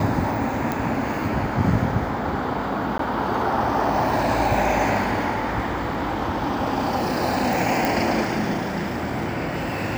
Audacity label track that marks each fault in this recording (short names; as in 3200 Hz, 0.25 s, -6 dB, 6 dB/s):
0.720000	0.720000	pop
2.980000	2.990000	gap 13 ms
7.850000	7.850000	pop